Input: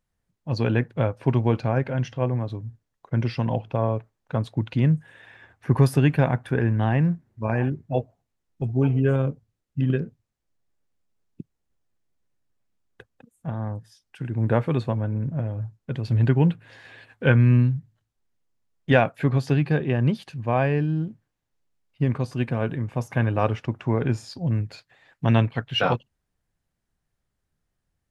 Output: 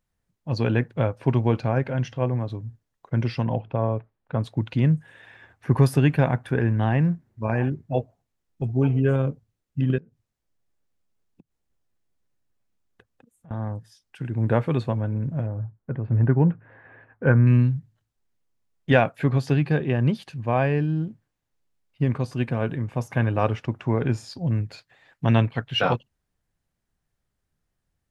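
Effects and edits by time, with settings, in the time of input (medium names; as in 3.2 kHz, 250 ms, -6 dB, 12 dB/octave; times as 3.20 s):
3.43–4.39 s: distance through air 260 m
9.98–13.51 s: compression 4:1, threshold -51 dBFS
15.46–17.47 s: low-pass 1.7 kHz 24 dB/octave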